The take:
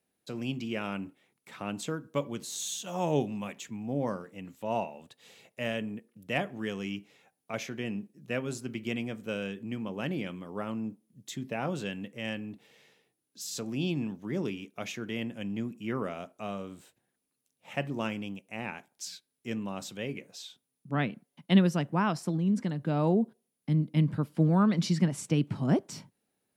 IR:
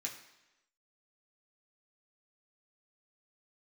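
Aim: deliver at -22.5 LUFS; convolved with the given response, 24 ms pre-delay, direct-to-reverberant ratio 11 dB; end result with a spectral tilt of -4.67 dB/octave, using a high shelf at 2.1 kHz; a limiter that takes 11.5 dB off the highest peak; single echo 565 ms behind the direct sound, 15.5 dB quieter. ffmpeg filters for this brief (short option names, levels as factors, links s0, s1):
-filter_complex "[0:a]highshelf=f=2100:g=5,alimiter=limit=0.0891:level=0:latency=1,aecho=1:1:565:0.168,asplit=2[s0][s1];[1:a]atrim=start_sample=2205,adelay=24[s2];[s1][s2]afir=irnorm=-1:irlink=0,volume=0.299[s3];[s0][s3]amix=inputs=2:normalize=0,volume=3.76"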